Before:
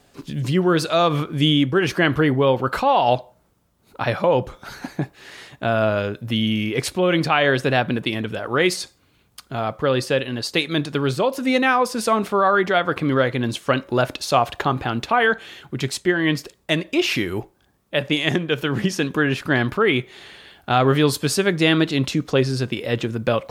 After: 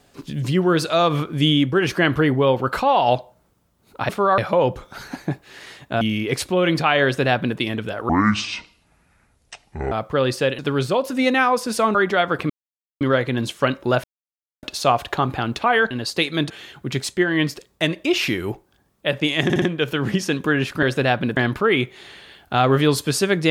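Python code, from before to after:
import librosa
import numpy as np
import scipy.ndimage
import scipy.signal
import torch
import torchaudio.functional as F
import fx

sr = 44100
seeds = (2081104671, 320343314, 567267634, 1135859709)

y = fx.edit(x, sr, fx.cut(start_s=5.72, length_s=0.75),
    fx.duplicate(start_s=7.5, length_s=0.54, to_s=19.53),
    fx.speed_span(start_s=8.55, length_s=1.06, speed=0.58),
    fx.move(start_s=10.28, length_s=0.59, to_s=15.38),
    fx.move(start_s=12.23, length_s=0.29, to_s=4.09),
    fx.insert_silence(at_s=13.07, length_s=0.51),
    fx.insert_silence(at_s=14.1, length_s=0.59),
    fx.stutter(start_s=18.32, slice_s=0.06, count=4), tone=tone)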